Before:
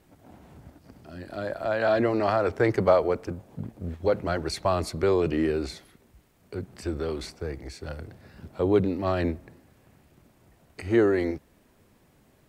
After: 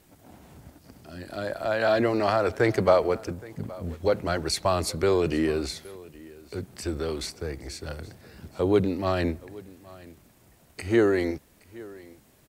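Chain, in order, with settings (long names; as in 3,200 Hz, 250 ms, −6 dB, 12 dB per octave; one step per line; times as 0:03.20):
high-shelf EQ 3,500 Hz +9 dB
single-tap delay 820 ms −21 dB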